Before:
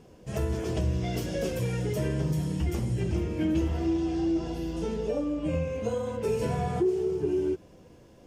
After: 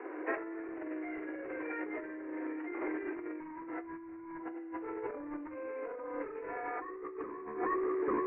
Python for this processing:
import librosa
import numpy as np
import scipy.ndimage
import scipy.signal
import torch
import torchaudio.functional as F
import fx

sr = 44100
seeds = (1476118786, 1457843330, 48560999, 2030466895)

y = scipy.signal.sosfilt(scipy.signal.butter(16, 290.0, 'highpass', fs=sr, output='sos'), x)
y = fx.peak_eq(y, sr, hz=570.0, db=-12.5, octaves=1.2)
y = 10.0 ** (-33.0 / 20.0) * (np.abs((y / 10.0 ** (-33.0 / 20.0) + 3.0) % 4.0 - 2.0) - 1.0)
y = scipy.signal.sosfilt(scipy.signal.butter(12, 2200.0, 'lowpass', fs=sr, output='sos'), y)
y = fx.hum_notches(y, sr, base_hz=60, count=8)
y = fx.echo_multitap(y, sr, ms=(42, 157, 845), db=(-6.0, -19.0, -11.5))
y = fx.over_compress(y, sr, threshold_db=-51.0, ratio=-1.0)
y = y * librosa.db_to_amplitude(10.5)